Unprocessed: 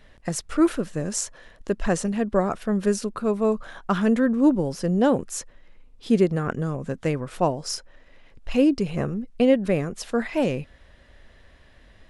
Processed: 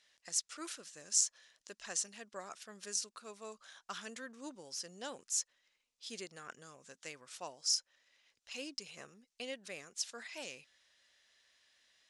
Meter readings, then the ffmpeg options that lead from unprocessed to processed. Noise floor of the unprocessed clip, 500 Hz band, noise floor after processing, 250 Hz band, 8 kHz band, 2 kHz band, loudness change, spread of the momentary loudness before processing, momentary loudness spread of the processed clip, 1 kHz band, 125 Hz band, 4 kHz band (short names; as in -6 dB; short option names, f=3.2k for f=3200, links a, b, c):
-53 dBFS, -26.5 dB, under -85 dBFS, -32.0 dB, -1.5 dB, -14.0 dB, -15.5 dB, 10 LU, 18 LU, -20.5 dB, -36.0 dB, -3.0 dB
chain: -af "bandpass=f=6.1k:t=q:w=1.6:csg=0"